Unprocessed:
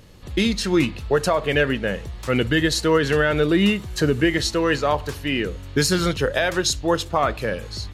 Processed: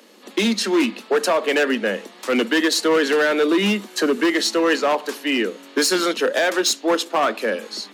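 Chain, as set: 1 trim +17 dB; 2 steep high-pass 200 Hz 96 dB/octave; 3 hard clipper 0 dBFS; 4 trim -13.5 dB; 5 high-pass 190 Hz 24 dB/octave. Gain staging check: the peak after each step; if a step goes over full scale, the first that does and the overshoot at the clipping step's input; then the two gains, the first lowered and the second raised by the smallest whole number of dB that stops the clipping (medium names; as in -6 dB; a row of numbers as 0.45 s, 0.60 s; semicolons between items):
+10.5 dBFS, +9.5 dBFS, 0.0 dBFS, -13.5 dBFS, -6.5 dBFS; step 1, 9.5 dB; step 1 +7 dB, step 4 -3.5 dB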